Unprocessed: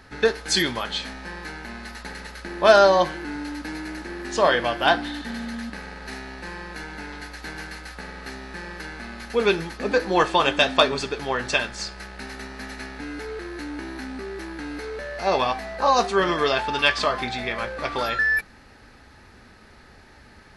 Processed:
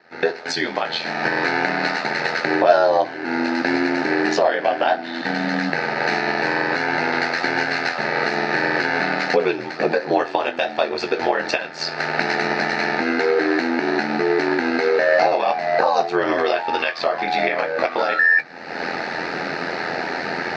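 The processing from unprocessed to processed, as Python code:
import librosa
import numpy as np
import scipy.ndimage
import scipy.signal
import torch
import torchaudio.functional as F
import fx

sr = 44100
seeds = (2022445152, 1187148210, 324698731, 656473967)

y = fx.recorder_agc(x, sr, target_db=-6.5, rise_db_per_s=47.0, max_gain_db=30)
y = fx.cabinet(y, sr, low_hz=220.0, low_slope=24, high_hz=4700.0, hz=(260.0, 710.0, 1100.0, 3300.0), db=(-7, 6, -8, -10))
y = y * np.sin(2.0 * np.pi * 42.0 * np.arange(len(y)) / sr)
y = fx.doubler(y, sr, ms=19.0, db=-11.5)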